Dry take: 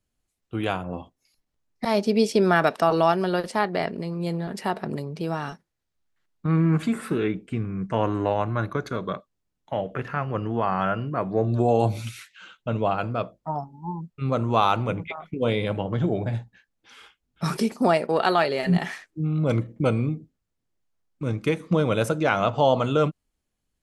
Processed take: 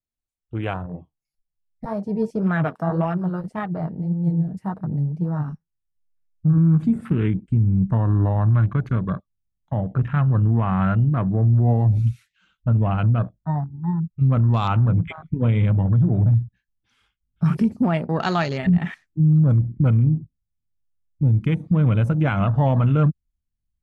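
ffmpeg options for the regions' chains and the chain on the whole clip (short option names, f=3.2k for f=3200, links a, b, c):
-filter_complex "[0:a]asettb=1/sr,asplit=3[a][b][c];[a]atrim=end=0.864[d];[b]atrim=start=0.86:end=6.58,asetpts=PTS-STARTPTS,afade=t=in:d=0.004:c=qsin,afade=t=out:st=5.716:d=0.004:c=qsin,equalizer=f=3.6k:t=o:w=1.3:g=-8,aecho=1:1:6.4:0.45,atrim=end_sample=252252,flanger=delay=3.8:depth=9.9:regen=51:speed=1.8:shape=sinusoidal[e];[c]atrim=start=6.576[f];[d][e]acrossfade=d=0.004:c1=hsin:c2=qsin[g];[g][f]acrossfade=d=0.004:c1=qsin:c2=hsin,afwtdn=0.0178,asubboost=boost=10:cutoff=140,alimiter=limit=-11dB:level=0:latency=1:release=82"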